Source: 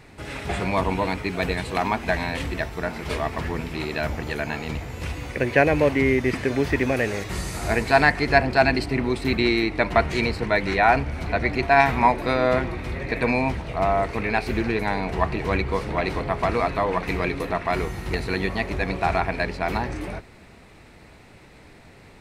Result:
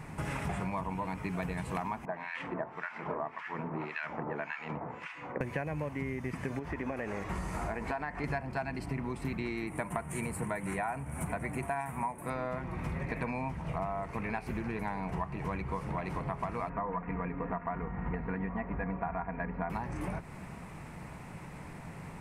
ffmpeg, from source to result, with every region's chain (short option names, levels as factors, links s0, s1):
-filter_complex "[0:a]asettb=1/sr,asplit=3[s0][s1][s2];[s0]atrim=end=2.054[s3];[s1]atrim=start=2.05:end=5.41,asetpts=PTS-STARTPTS,afade=t=in:d=0.004:c=qsin,afade=t=out:st=3.356:d=0.004:c=qsin,highpass=320,lowpass=2400,acrossover=split=1400[s4][s5];[s4]aeval=exprs='val(0)*(1-1/2+1/2*cos(2*PI*1.8*n/s))':c=same[s6];[s5]aeval=exprs='val(0)*(1-1/2-1/2*cos(2*PI*1.8*n/s))':c=same[s7];[s6][s7]amix=inputs=2:normalize=0[s8];[s2]atrim=start=5.406[s9];[s3][s8]acrossfade=d=0.004:c1=hsin:c2=qsin[s10];[s10][s9]acrossfade=d=0.004:c1=qsin:c2=hsin,asettb=1/sr,asplit=3[s11][s12][s13];[s11]atrim=end=6.594[s14];[s12]atrim=start=6.59:end=8.24,asetpts=PTS-STARTPTS,afade=t=in:d=0.004:c=qsin,afade=t=out:st=1.646:d=0.004:c=qsin,lowpass=f=2100:p=1,equalizer=f=130:w=1.5:g=-11,acompressor=threshold=0.0501:ratio=2:attack=3.2:release=140:knee=1:detection=peak[s15];[s13]atrim=start=8.236[s16];[s14][s15]acrossfade=d=0.004:c1=hsin:c2=qsin[s17];[s17][s16]acrossfade=d=0.004:c1=qsin:c2=hsin,asettb=1/sr,asplit=3[s18][s19][s20];[s18]atrim=end=9.674[s21];[s19]atrim=start=9.67:end=12.3,asetpts=PTS-STARTPTS,afade=t=in:d=0.004:c=qsin,afade=t=out:st=2.626:d=0.004:c=qsin,highpass=74,highshelf=f=6800:t=q:w=3:g=12[s22];[s20]atrim=start=12.296[s23];[s21][s22]acrossfade=d=0.004:c1=hsin:c2=qsin[s24];[s24][s23]acrossfade=d=0.004:c1=qsin:c2=hsin,asettb=1/sr,asplit=3[s25][s26][s27];[s25]atrim=end=16.694[s28];[s26]atrim=start=16.69:end=19.7,asetpts=PTS-STARTPTS,afade=t=in:d=0.004:c=qsin,afade=t=out:st=3.006:d=0.004:c=qsin,lowpass=f=2000:w=0.5412,lowpass=f=2000:w=1.3066,aecho=1:1:4.2:0.5,atrim=end_sample=132741[s29];[s27]atrim=start=19.696[s30];[s28][s29]acrossfade=d=0.004:c1=hsin:c2=qsin[s31];[s31][s30]acrossfade=d=0.004:c1=qsin:c2=hsin,equalizer=f=160:t=o:w=0.67:g=11,equalizer=f=400:t=o:w=0.67:g=-3,equalizer=f=1000:t=o:w=0.67:g=7,equalizer=f=4000:t=o:w=0.67:g=-10,equalizer=f=10000:t=o:w=0.67:g=4,acompressor=threshold=0.0251:ratio=12"